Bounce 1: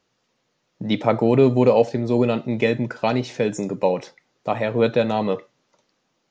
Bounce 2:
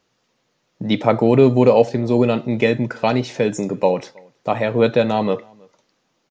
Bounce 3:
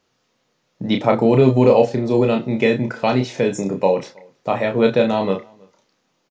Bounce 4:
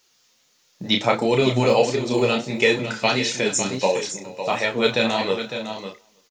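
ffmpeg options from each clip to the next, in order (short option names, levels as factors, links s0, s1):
-filter_complex "[0:a]asplit=2[s0][s1];[s1]adelay=320.7,volume=0.0398,highshelf=f=4000:g=-7.22[s2];[s0][s2]amix=inputs=2:normalize=0,volume=1.41"
-filter_complex "[0:a]asplit=2[s0][s1];[s1]adelay=31,volume=0.562[s2];[s0][s2]amix=inputs=2:normalize=0,volume=0.891"
-af "aecho=1:1:411|555:0.106|0.335,flanger=delay=2.1:depth=7.4:regen=44:speed=1.5:shape=sinusoidal,crystalizer=i=10:c=0,volume=0.708"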